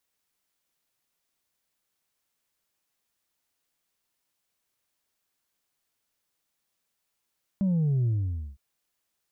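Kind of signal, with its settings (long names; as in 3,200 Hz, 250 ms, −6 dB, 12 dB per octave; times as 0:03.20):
bass drop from 200 Hz, over 0.96 s, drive 2 dB, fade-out 0.51 s, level −22 dB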